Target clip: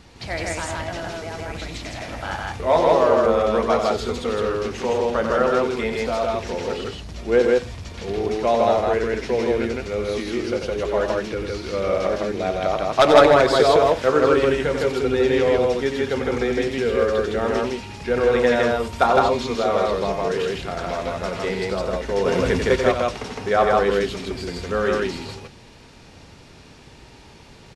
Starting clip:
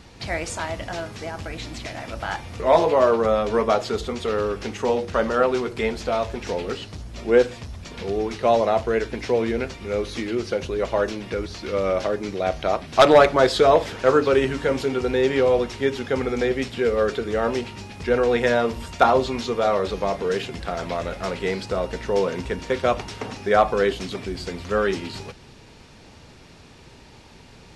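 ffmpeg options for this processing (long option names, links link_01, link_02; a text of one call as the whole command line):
ffmpeg -i in.wav -filter_complex "[0:a]asettb=1/sr,asplit=3[link_01][link_02][link_03];[link_01]atrim=end=22.264[link_04];[link_02]atrim=start=22.26:end=22.76,asetpts=PTS-STARTPTS,afade=type=in:duration=0.004:curve=qsin,afade=type=out:start_time=0.496:duration=0.004:curve=qsin,acontrast=84[link_05];[link_03]atrim=start=22.756[link_06];[link_04][link_05]acrossfade=duration=0.004:curve1=hsin:curve2=qsin[link_07];[link_07][link_06]acrossfade=duration=0.004:curve1=qsin:curve2=hsin,asplit=2[link_08][link_09];[link_09]aecho=0:1:90.38|160.3:0.447|0.891[link_10];[link_08][link_10]amix=inputs=2:normalize=0,volume=-1.5dB" out.wav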